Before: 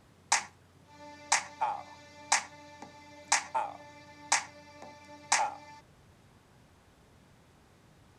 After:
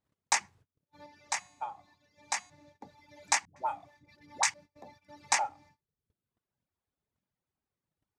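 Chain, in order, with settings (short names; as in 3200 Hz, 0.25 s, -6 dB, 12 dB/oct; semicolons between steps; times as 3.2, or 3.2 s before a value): reverb removal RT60 1.3 s; gate -57 dBFS, range -28 dB; 1.06–2.5 resonator 360 Hz, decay 0.81 s, mix 50%; 3.45–4.54 dispersion highs, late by 0.112 s, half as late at 420 Hz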